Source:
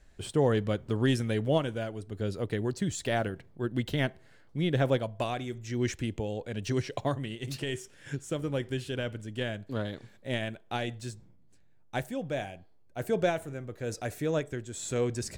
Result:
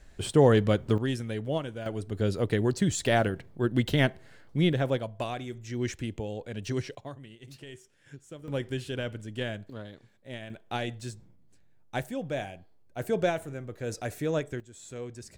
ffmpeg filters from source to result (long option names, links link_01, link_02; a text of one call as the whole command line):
ffmpeg -i in.wav -af "asetnsamples=nb_out_samples=441:pad=0,asendcmd='0.98 volume volume -4dB;1.86 volume volume 5dB;4.73 volume volume -1.5dB;6.95 volume volume -11.5dB;8.48 volume volume 0dB;9.7 volume volume -8.5dB;10.5 volume volume 0.5dB;14.6 volume volume -10dB',volume=5.5dB" out.wav